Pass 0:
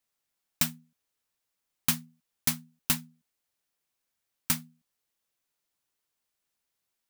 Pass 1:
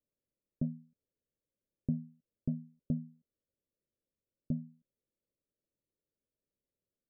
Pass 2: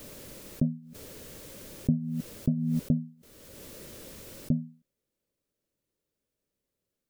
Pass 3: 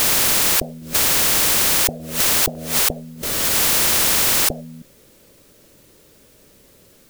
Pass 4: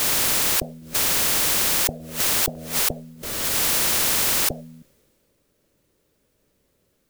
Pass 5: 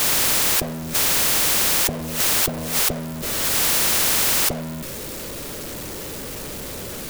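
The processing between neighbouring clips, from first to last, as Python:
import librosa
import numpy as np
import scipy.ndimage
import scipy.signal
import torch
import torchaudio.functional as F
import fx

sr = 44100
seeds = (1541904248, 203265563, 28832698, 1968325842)

y1 = scipy.signal.sosfilt(scipy.signal.butter(16, 610.0, 'lowpass', fs=sr, output='sos'), x)
y1 = F.gain(torch.from_numpy(y1), 2.0).numpy()
y2 = fx.pre_swell(y1, sr, db_per_s=27.0)
y2 = F.gain(torch.from_numpy(y2), 7.5).numpy()
y3 = fx.spectral_comp(y2, sr, ratio=10.0)
y3 = F.gain(torch.from_numpy(y3), 6.0).numpy()
y4 = fx.band_widen(y3, sr, depth_pct=40)
y4 = F.gain(torch.from_numpy(y4), -4.0).numpy()
y5 = y4 + 0.5 * 10.0 ** (-26.0 / 20.0) * np.sign(y4)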